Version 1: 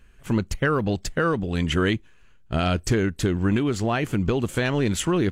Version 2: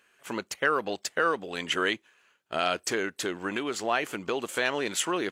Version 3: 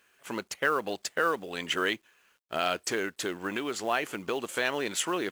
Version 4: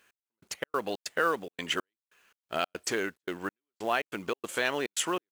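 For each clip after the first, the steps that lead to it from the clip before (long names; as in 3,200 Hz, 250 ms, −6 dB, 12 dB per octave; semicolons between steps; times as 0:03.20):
high-pass filter 520 Hz 12 dB per octave
log-companded quantiser 6 bits; level −1.5 dB
gate pattern "x...xx.xx.xxxx.x" 142 BPM −60 dB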